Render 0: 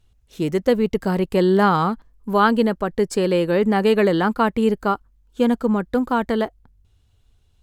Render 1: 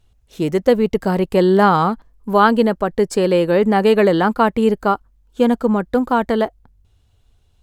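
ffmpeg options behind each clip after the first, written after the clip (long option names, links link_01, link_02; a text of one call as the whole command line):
ffmpeg -i in.wav -af "equalizer=frequency=680:width=1.2:gain=3.5,volume=2dB" out.wav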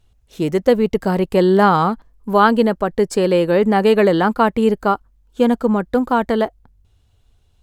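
ffmpeg -i in.wav -af anull out.wav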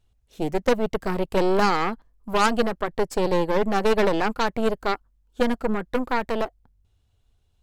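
ffmpeg -i in.wav -af "aeval=exprs='0.891*(cos(1*acos(clip(val(0)/0.891,-1,1)))-cos(1*PI/2))+0.224*(cos(4*acos(clip(val(0)/0.891,-1,1)))-cos(4*PI/2))+0.316*(cos(6*acos(clip(val(0)/0.891,-1,1)))-cos(6*PI/2))':channel_layout=same,volume=-8.5dB" out.wav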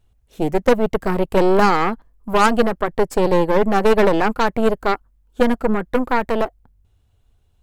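ffmpeg -i in.wav -af "equalizer=frequency=4700:width_type=o:width=1.6:gain=-5.5,volume=6dB" out.wav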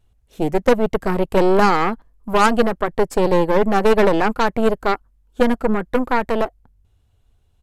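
ffmpeg -i in.wav -af "aresample=32000,aresample=44100" out.wav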